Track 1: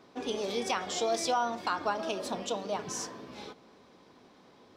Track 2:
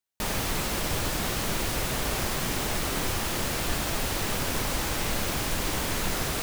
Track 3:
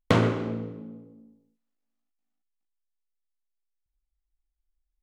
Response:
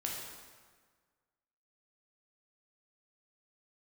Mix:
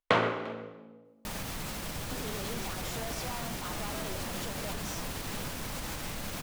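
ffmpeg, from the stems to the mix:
-filter_complex "[0:a]asoftclip=type=tanh:threshold=0.015,adelay=1950,volume=0.708[s0];[1:a]equalizer=f=380:w=3.6:g=-4.5,alimiter=limit=0.0708:level=0:latency=1:release=116,adelay=1050,volume=0.562[s1];[2:a]acrossover=split=490 4200:gain=0.126 1 0.251[s2][s3][s4];[s2][s3][s4]amix=inputs=3:normalize=0,volume=1.19,asplit=2[s5][s6];[s6]volume=0.0841,aecho=0:1:348:1[s7];[s0][s1][s5][s7]amix=inputs=4:normalize=0,equalizer=f=170:w=1.3:g=4"

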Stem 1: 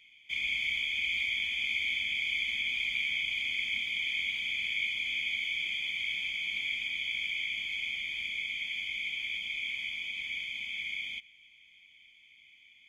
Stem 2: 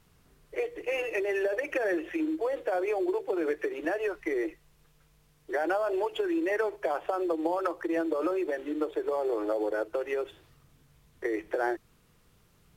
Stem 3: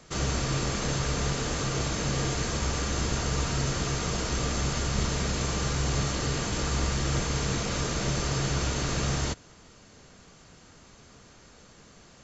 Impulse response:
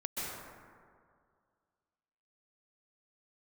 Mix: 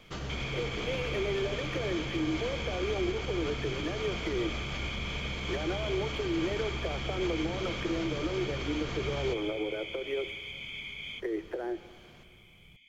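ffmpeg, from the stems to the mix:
-filter_complex "[0:a]alimiter=level_in=2.11:limit=0.0631:level=0:latency=1:release=133,volume=0.473,volume=0.708[s0];[1:a]acrossover=split=410[s1][s2];[s2]acompressor=threshold=0.0178:ratio=6[s3];[s1][s3]amix=inputs=2:normalize=0,volume=0.531,asplit=2[s4][s5];[s5]volume=0.119[s6];[2:a]lowpass=3800,alimiter=level_in=1.12:limit=0.0631:level=0:latency=1:release=82,volume=0.891,volume=0.501,asplit=2[s7][s8];[s8]volume=0.355[s9];[s0][s4]amix=inputs=2:normalize=0,lowshelf=f=440:g=11,alimiter=level_in=1.06:limit=0.0631:level=0:latency=1:release=268,volume=0.944,volume=1[s10];[3:a]atrim=start_sample=2205[s11];[s6][s9]amix=inputs=2:normalize=0[s12];[s12][s11]afir=irnorm=-1:irlink=0[s13];[s7][s10][s13]amix=inputs=3:normalize=0,equalizer=f=3100:w=6.4:g=4.5"

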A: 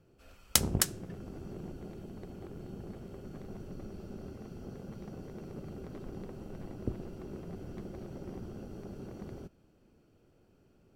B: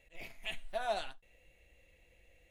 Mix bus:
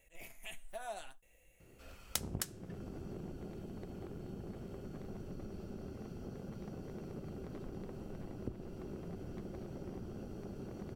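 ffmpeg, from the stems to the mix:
-filter_complex "[0:a]adelay=1600,volume=1.33[s0];[1:a]highshelf=f=5900:g=-11,aexciter=amount=6.2:drive=7.5:freq=6300,volume=0.75[s1];[s0][s1]amix=inputs=2:normalize=0,acompressor=threshold=0.00562:ratio=2"

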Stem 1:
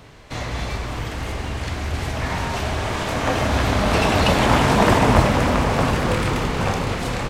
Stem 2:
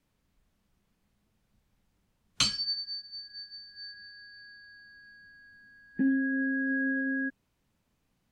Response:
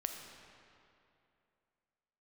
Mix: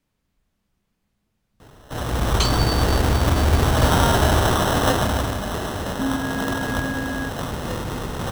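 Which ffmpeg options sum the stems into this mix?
-filter_complex "[0:a]dynaudnorm=f=140:g=9:m=3.98,acrusher=samples=19:mix=1:aa=0.000001,adelay=1600,volume=0.794,afade=t=out:st=4.62:d=0.77:silence=0.316228[s0];[1:a]volume=1.12[s1];[s0][s1]amix=inputs=2:normalize=0"

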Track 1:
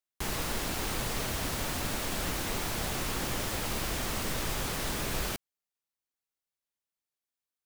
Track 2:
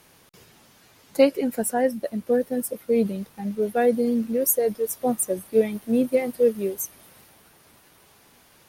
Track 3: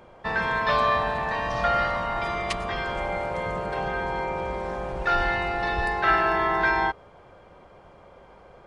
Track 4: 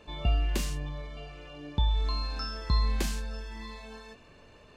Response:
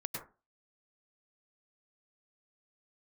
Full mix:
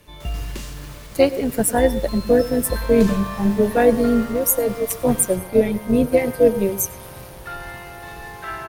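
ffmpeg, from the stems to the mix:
-filter_complex "[0:a]alimiter=level_in=2.11:limit=0.0631:level=0:latency=1:release=243,volume=0.473,volume=0.708[s0];[1:a]lowshelf=f=180:t=q:w=1.5:g=11,dynaudnorm=f=180:g=3:m=3.98,tremolo=f=190:d=0.571,volume=0.841,asplit=2[s1][s2];[s2]volume=0.188[s3];[2:a]adelay=2400,volume=0.316[s4];[3:a]volume=0.841[s5];[4:a]atrim=start_sample=2205[s6];[s3][s6]afir=irnorm=-1:irlink=0[s7];[s0][s1][s4][s5][s7]amix=inputs=5:normalize=0,bandreject=f=760:w=12"

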